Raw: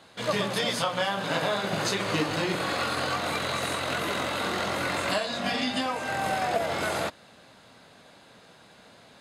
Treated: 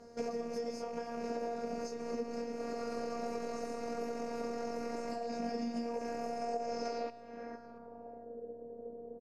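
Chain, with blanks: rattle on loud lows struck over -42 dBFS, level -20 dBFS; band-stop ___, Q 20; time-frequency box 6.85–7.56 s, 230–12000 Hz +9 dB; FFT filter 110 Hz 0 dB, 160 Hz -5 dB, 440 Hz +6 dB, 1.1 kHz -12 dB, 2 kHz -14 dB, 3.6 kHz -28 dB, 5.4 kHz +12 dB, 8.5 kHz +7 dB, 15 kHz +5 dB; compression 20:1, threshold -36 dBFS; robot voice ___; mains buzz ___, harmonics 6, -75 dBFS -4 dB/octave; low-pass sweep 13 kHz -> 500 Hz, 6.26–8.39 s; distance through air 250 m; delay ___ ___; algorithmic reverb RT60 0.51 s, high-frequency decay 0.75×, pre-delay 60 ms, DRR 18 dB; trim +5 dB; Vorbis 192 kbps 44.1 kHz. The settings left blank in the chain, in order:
5.8 kHz, 234 Hz, 100 Hz, 681 ms, -23 dB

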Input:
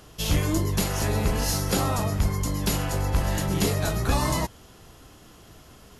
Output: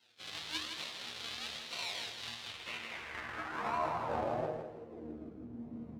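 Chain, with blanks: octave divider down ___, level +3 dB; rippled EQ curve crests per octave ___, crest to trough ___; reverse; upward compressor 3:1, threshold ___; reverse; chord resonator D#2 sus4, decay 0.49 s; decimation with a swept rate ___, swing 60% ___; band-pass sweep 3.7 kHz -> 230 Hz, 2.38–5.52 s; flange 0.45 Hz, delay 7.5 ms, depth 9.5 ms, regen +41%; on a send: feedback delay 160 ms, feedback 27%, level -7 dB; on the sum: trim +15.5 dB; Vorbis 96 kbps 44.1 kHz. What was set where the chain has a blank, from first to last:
2 oct, 1.9, 13 dB, -28 dBFS, 37×, 0.99 Hz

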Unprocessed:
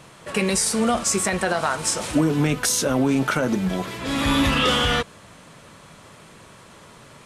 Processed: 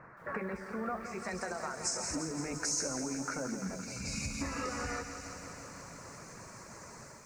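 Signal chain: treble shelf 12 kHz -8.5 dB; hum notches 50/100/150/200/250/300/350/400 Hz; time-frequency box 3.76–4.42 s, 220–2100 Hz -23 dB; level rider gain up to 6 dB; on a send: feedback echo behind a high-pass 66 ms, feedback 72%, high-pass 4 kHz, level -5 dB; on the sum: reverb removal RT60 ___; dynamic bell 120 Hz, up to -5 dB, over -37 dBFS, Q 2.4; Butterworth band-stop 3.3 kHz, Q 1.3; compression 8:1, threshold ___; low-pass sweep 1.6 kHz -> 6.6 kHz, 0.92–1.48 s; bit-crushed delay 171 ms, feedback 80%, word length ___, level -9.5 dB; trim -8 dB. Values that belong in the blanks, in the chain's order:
0.54 s, -28 dBFS, 9-bit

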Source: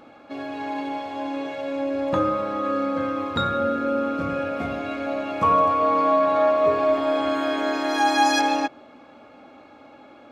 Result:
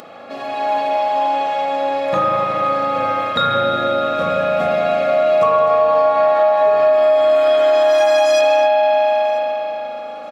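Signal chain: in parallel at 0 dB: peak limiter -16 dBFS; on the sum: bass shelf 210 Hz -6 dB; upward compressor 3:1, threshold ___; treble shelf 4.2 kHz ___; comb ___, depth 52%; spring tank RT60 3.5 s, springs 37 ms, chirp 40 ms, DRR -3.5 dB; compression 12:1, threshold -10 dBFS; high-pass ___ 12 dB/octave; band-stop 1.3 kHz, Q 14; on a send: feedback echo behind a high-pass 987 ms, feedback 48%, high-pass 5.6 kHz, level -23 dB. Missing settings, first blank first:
-36 dBFS, +2.5 dB, 1.6 ms, 140 Hz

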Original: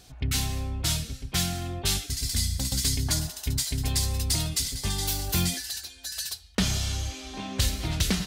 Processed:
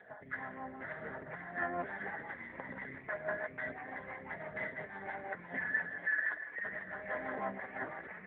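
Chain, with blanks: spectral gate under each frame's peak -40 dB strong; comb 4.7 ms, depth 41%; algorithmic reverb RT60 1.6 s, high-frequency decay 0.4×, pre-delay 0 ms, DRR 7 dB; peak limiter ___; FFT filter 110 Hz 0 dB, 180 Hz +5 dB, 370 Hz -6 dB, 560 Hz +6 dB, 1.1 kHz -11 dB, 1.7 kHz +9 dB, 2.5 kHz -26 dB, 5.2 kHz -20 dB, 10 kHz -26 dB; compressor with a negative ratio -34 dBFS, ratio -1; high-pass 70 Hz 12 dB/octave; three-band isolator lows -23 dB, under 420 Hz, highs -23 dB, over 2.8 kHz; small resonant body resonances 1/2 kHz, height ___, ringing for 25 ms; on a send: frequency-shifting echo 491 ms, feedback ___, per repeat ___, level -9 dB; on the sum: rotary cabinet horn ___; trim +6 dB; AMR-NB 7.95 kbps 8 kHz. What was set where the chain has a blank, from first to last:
-17.5 dBFS, 13 dB, 45%, +130 Hz, 6 Hz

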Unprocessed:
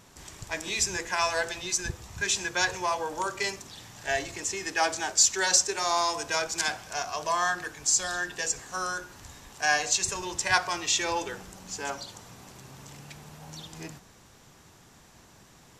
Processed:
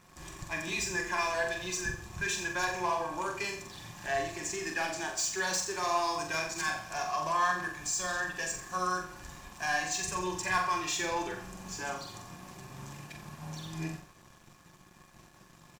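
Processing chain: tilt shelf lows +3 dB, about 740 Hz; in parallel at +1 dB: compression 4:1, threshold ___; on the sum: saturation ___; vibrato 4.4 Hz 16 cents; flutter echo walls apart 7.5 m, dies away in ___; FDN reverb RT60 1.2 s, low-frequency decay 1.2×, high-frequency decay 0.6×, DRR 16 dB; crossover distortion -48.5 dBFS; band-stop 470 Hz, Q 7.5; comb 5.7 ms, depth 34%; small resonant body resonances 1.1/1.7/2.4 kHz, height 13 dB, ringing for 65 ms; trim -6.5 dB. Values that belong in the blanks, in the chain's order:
-39 dBFS, -21 dBFS, 0.49 s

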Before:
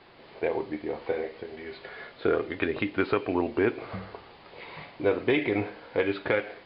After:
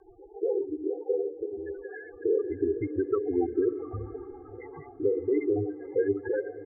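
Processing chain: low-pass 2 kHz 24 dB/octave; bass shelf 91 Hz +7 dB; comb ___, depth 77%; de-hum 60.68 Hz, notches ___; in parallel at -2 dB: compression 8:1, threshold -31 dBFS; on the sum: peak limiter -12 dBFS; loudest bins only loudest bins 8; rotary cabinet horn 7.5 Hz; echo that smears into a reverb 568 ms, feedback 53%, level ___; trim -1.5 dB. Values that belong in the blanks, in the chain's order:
2.5 ms, 9, -16 dB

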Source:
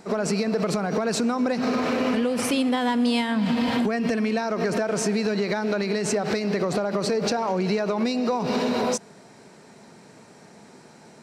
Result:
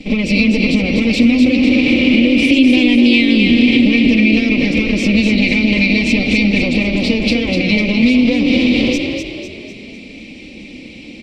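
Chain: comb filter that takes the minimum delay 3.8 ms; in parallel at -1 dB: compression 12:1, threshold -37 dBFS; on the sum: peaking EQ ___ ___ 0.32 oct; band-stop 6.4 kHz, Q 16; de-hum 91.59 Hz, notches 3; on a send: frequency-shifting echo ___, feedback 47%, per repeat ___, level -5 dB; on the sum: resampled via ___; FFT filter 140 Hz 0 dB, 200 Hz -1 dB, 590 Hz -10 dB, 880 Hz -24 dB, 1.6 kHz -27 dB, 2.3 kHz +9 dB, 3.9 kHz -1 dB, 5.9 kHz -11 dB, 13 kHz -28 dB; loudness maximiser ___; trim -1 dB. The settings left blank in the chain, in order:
290 Hz, +9.5 dB, 250 ms, +38 Hz, 32 kHz, +12.5 dB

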